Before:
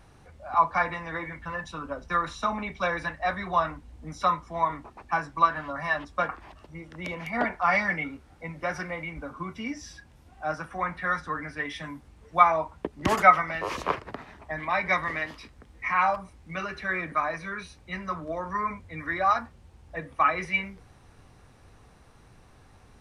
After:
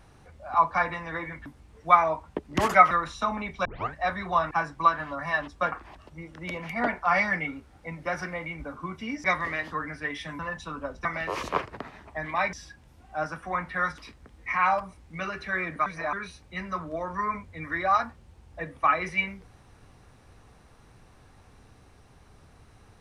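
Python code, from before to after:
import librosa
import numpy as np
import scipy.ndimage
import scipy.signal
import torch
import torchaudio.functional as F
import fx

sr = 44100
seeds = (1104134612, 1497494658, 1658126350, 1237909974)

y = fx.edit(x, sr, fx.swap(start_s=1.46, length_s=0.66, other_s=11.94, other_length_s=1.45),
    fx.tape_start(start_s=2.86, length_s=0.29),
    fx.cut(start_s=3.72, length_s=1.36),
    fx.swap(start_s=9.81, length_s=1.45, other_s=14.87, other_length_s=0.47),
    fx.reverse_span(start_s=17.22, length_s=0.27), tone=tone)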